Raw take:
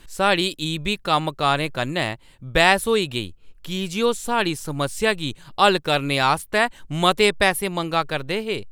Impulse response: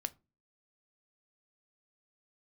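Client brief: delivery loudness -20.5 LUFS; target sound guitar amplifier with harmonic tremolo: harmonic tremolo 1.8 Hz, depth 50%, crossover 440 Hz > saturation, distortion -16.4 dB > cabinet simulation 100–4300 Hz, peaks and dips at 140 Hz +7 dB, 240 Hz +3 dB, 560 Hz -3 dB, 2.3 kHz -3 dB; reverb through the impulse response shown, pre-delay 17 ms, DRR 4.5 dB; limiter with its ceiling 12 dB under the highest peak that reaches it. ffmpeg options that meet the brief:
-filter_complex "[0:a]alimiter=limit=0.224:level=0:latency=1,asplit=2[s0][s1];[1:a]atrim=start_sample=2205,adelay=17[s2];[s1][s2]afir=irnorm=-1:irlink=0,volume=0.668[s3];[s0][s3]amix=inputs=2:normalize=0,acrossover=split=440[s4][s5];[s4]aeval=exprs='val(0)*(1-0.5/2+0.5/2*cos(2*PI*1.8*n/s))':c=same[s6];[s5]aeval=exprs='val(0)*(1-0.5/2-0.5/2*cos(2*PI*1.8*n/s))':c=same[s7];[s6][s7]amix=inputs=2:normalize=0,asoftclip=threshold=0.133,highpass=100,equalizer=f=140:t=q:w=4:g=7,equalizer=f=240:t=q:w=4:g=3,equalizer=f=560:t=q:w=4:g=-3,equalizer=f=2300:t=q:w=4:g=-3,lowpass=f=4300:w=0.5412,lowpass=f=4300:w=1.3066,volume=2.66"

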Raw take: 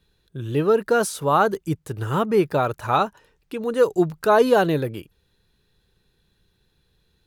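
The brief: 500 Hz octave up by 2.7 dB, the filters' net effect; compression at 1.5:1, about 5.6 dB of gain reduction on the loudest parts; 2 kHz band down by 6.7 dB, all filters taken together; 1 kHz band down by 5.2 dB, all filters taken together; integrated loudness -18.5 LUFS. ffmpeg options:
-af "equalizer=f=500:t=o:g=5,equalizer=f=1000:t=o:g=-7.5,equalizer=f=2000:t=o:g=-6.5,acompressor=threshold=0.0631:ratio=1.5,volume=1.88"

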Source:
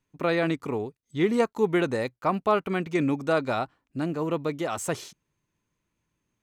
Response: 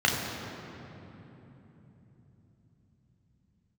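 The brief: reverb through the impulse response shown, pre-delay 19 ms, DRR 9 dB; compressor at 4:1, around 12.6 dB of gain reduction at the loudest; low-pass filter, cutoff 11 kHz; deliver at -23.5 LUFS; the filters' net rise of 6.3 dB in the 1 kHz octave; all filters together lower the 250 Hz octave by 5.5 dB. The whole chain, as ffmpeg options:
-filter_complex "[0:a]lowpass=11000,equalizer=f=250:t=o:g=-9,equalizer=f=1000:t=o:g=8.5,acompressor=threshold=0.0355:ratio=4,asplit=2[s0][s1];[1:a]atrim=start_sample=2205,adelay=19[s2];[s1][s2]afir=irnorm=-1:irlink=0,volume=0.0631[s3];[s0][s3]amix=inputs=2:normalize=0,volume=2.99"

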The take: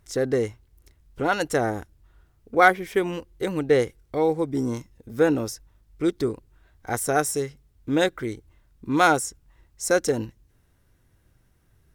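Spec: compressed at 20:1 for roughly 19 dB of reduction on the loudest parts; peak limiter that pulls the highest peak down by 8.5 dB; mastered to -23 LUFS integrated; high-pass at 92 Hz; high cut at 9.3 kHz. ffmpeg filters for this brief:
-af "highpass=92,lowpass=9300,acompressor=threshold=0.0316:ratio=20,volume=6.68,alimiter=limit=0.266:level=0:latency=1"

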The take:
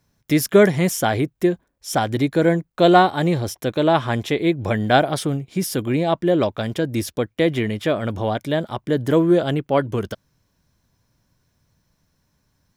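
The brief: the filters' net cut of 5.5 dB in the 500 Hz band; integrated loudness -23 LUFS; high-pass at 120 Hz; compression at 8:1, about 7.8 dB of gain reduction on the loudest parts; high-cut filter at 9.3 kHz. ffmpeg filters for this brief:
-af "highpass=120,lowpass=9300,equalizer=f=500:t=o:g=-7.5,acompressor=threshold=0.112:ratio=8,volume=1.5"

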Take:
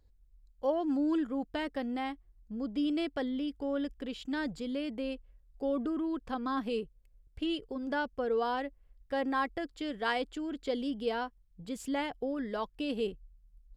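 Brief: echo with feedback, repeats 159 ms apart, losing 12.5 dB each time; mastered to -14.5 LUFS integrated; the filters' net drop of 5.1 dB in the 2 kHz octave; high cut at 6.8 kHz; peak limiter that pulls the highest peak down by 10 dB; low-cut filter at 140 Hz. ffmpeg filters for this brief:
-af "highpass=140,lowpass=6800,equalizer=f=2000:t=o:g=-7,alimiter=level_in=2:limit=0.0631:level=0:latency=1,volume=0.501,aecho=1:1:159|318|477:0.237|0.0569|0.0137,volume=15"

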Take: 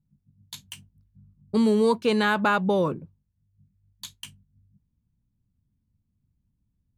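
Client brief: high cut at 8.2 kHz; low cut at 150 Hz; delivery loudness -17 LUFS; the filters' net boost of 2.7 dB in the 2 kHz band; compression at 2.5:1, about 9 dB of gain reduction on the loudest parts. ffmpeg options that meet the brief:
-af "highpass=150,lowpass=8200,equalizer=f=2000:t=o:g=4,acompressor=threshold=0.0282:ratio=2.5,volume=6.68"

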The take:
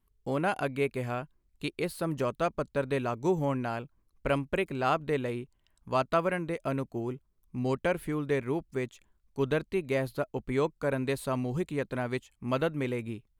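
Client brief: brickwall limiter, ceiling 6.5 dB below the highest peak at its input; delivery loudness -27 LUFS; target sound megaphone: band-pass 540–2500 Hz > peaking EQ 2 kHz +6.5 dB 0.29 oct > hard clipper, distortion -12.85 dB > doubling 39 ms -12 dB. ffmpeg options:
-filter_complex "[0:a]alimiter=limit=0.1:level=0:latency=1,highpass=540,lowpass=2500,equalizer=f=2000:t=o:w=0.29:g=6.5,asoftclip=type=hard:threshold=0.0398,asplit=2[s0][s1];[s1]adelay=39,volume=0.251[s2];[s0][s2]amix=inputs=2:normalize=0,volume=3.55"

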